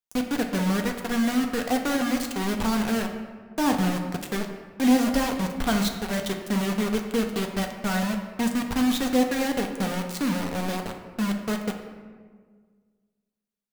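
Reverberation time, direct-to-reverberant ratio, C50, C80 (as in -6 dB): 1.7 s, 2.5 dB, 6.5 dB, 8.0 dB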